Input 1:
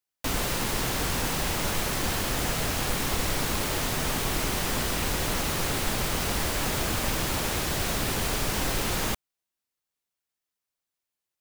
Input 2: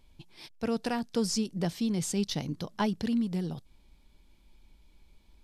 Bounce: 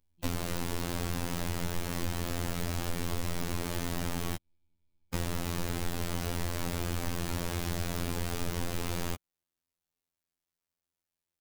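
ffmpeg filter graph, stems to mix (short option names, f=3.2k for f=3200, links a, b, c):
-filter_complex "[0:a]volume=-1.5dB,asplit=3[a][b][c];[a]atrim=end=4.36,asetpts=PTS-STARTPTS,afade=t=out:st=4.356:d=0.004:c=hsin[d];[b]atrim=start=4.36:end=5.14,asetpts=PTS-STARTPTS,volume=0[e];[c]atrim=start=5.14,asetpts=PTS-STARTPTS,afade=t=in:d=0.004:c=hsin[f];[d][e][f]concat=n=3:v=0:a=1[g];[1:a]volume=-20dB[h];[g][h]amix=inputs=2:normalize=0,lowshelf=f=450:g=8.5,afftfilt=real='hypot(re,im)*cos(PI*b)':imag='0':win_size=2048:overlap=0.75,acompressor=threshold=-27dB:ratio=5"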